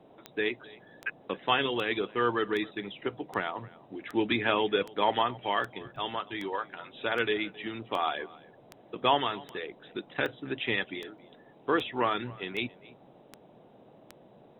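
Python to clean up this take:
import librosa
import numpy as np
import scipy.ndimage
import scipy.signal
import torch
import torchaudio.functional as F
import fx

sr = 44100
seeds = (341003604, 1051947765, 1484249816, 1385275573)

y = fx.fix_declick_ar(x, sr, threshold=10.0)
y = fx.fix_interpolate(y, sr, at_s=(5.96, 11.18), length_ms=1.9)
y = fx.noise_reduce(y, sr, print_start_s=13.38, print_end_s=13.88, reduce_db=20.0)
y = fx.fix_echo_inverse(y, sr, delay_ms=269, level_db=-22.0)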